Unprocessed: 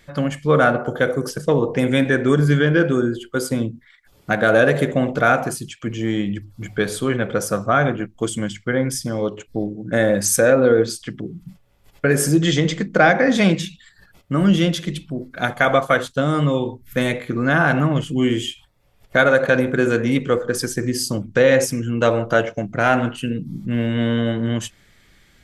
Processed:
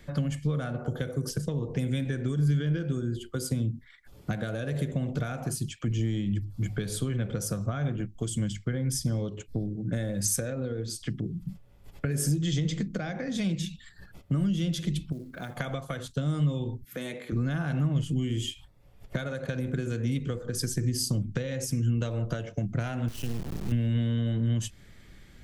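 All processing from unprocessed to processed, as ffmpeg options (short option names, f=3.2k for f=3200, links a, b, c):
-filter_complex "[0:a]asettb=1/sr,asplit=3[a][b][c];[a]atrim=end=15.124[d];[b]atrim=start=15.12:end=15.57,asetpts=PTS-STARTPTS,afade=t=in:d=0.004:c=qsin,afade=t=out:st=0.446:d=0.004:c=qsin,lowshelf=f=60:g=-8,acompressor=threshold=-39dB:ratio=2:attack=3.2:release=140:knee=1:detection=peak,acrusher=bits=6:mode=log:mix=0:aa=0.000001[e];[c]atrim=start=15.566[f];[d][e]acrossfade=d=0.004:c1=hsin:c2=qsin[g];[g][f]acrossfade=d=0.004:c1=qsin:c2=hsin,asettb=1/sr,asplit=3[h][i][j];[h]atrim=end=16.844[k];[i]atrim=start=16.84:end=17.32,asetpts=PTS-STARTPTS,afade=t=in:d=0.004:c=qsin,afade=t=out:st=0.476:d=0.004:c=qsin,highpass=280,acompressor=threshold=-37dB:ratio=1.5:attack=3.2:release=140:knee=1:detection=peak[l];[j]atrim=start=17.316[m];[k][l]acrossfade=d=0.004:c1=hsin:c2=qsin[n];[n][m]acrossfade=d=0.004:c1=qsin:c2=hsin,asettb=1/sr,asplit=3[o][p][q];[o]atrim=end=23.084[r];[p]atrim=start=23.08:end=23.72,asetpts=PTS-STARTPTS,afade=t=in:d=0.004:c=qsin,afade=t=out:st=0.636:d=0.004:c=qsin,equalizer=f=3.5k:w=0.82:g=3.5,acompressor=threshold=-30dB:ratio=2:attack=3.2:release=140:knee=1:detection=peak,acrusher=bits=3:dc=4:mix=0:aa=0.000001[s];[q]atrim=start=23.716[t];[r][s]acrossfade=d=0.004:c1=hsin:c2=qsin[u];[u][t]acrossfade=d=0.004:c1=qsin:c2=hsin,acompressor=threshold=-20dB:ratio=6,lowshelf=f=500:g=9,acrossover=split=150|3000[v][w][x];[w]acompressor=threshold=-34dB:ratio=3[y];[v][y][x]amix=inputs=3:normalize=0,volume=-4dB"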